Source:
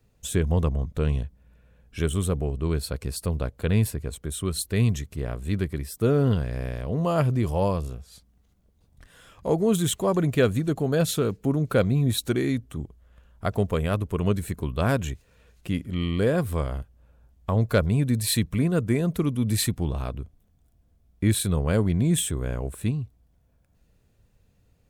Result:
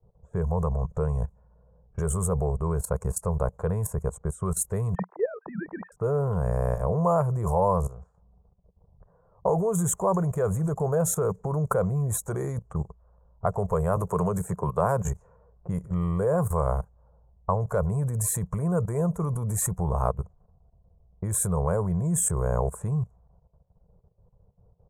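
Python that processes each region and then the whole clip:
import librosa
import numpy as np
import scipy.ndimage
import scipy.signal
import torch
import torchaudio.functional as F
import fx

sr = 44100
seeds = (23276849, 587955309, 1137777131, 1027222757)

y = fx.chain(x, sr, fx.sine_speech(),
    fx.lowpass_res(hz=1700.0, q=1.9), at=(4.95, 5.92))
y = fx.chain(y, sr, fx.highpass(hz=110.0, slope=12),
    fx.band_squash(depth_pct=70), at=(13.96, 15.08))
y = fx.level_steps(y, sr, step_db=16)
y = fx.env_lowpass(y, sr, base_hz=550.0, full_db=-30.5)
y = fx.curve_eq(y, sr, hz=(110.0, 180.0, 260.0, 450.0, 670.0, 1000.0, 2900.0, 4400.0, 6800.0, 13000.0), db=(0, 3, -18, 5, 6, 11, -25, -25, 4, -1))
y = F.gain(torch.from_numpy(y), 6.0).numpy()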